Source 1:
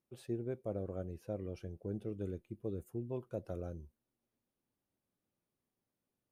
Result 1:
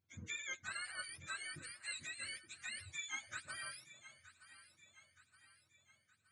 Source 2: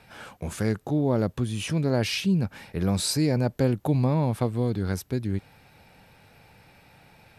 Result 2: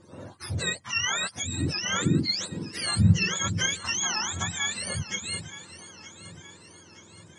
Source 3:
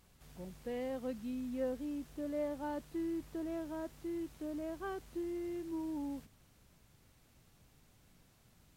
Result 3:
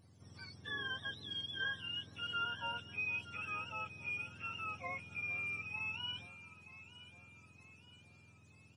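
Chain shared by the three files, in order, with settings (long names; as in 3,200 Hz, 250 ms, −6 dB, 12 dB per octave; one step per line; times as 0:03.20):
frequency axis turned over on the octave scale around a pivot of 910 Hz
delay that swaps between a low-pass and a high-pass 460 ms, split 870 Hz, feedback 71%, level −12.5 dB
downsampling to 22,050 Hz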